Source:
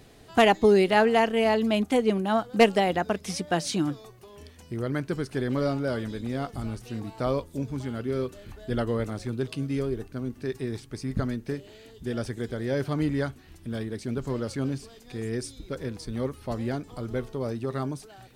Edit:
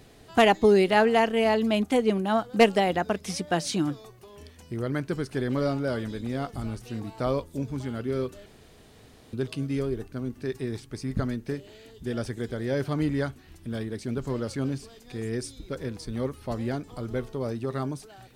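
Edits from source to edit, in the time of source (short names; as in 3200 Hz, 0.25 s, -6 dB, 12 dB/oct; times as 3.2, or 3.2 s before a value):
8.46–9.33 room tone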